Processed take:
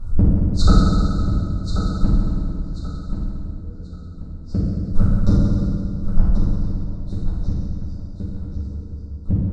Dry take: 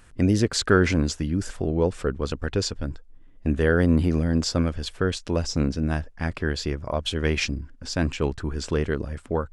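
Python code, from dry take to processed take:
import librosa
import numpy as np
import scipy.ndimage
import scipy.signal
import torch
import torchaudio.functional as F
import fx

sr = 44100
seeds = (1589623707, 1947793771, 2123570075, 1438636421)

p1 = fx.recorder_agc(x, sr, target_db=-9.5, rise_db_per_s=37.0, max_gain_db=30)
p2 = fx.brickwall_bandstop(p1, sr, low_hz=1500.0, high_hz=3600.0)
p3 = fx.riaa(p2, sr, side='playback')
p4 = fx.gate_flip(p3, sr, shuts_db=-6.0, range_db=-41)
p5 = fx.low_shelf(p4, sr, hz=95.0, db=6.0)
p6 = p5 + fx.echo_feedback(p5, sr, ms=1085, feedback_pct=28, wet_db=-9.0, dry=0)
p7 = fx.rev_fdn(p6, sr, rt60_s=2.4, lf_ratio=1.2, hf_ratio=0.85, size_ms=31.0, drr_db=-8.5)
p8 = 10.0 ** (-11.0 / 20.0) * np.tanh(p7 / 10.0 ** (-11.0 / 20.0))
p9 = p7 + (p8 * librosa.db_to_amplitude(-9.0))
y = p9 * librosa.db_to_amplitude(-3.5)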